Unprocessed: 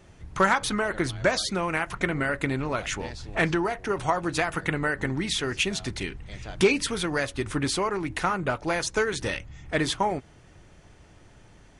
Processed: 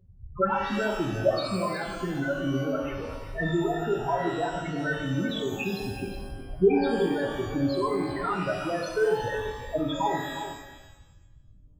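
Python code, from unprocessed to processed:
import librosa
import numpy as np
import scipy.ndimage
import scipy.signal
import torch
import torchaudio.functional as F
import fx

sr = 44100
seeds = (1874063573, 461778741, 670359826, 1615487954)

y = fx.high_shelf(x, sr, hz=3600.0, db=-5.0)
y = fx.spec_topn(y, sr, count=4)
y = fx.echo_multitap(y, sr, ms=(342, 367), db=(-17.5, -11.5))
y = fx.rev_shimmer(y, sr, seeds[0], rt60_s=1.0, semitones=12, shimmer_db=-8, drr_db=1.0)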